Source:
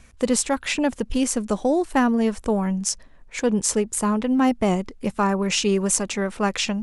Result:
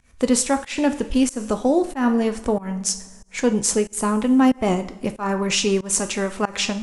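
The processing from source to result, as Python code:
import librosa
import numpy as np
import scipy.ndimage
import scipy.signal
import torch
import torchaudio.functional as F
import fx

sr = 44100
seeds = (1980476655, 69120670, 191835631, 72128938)

y = fx.rev_double_slope(x, sr, seeds[0], early_s=0.47, late_s=1.9, knee_db=-16, drr_db=8.0)
y = fx.volume_shaper(y, sr, bpm=93, per_beat=1, depth_db=-23, release_ms=213.0, shape='fast start')
y = y * librosa.db_to_amplitude(1.5)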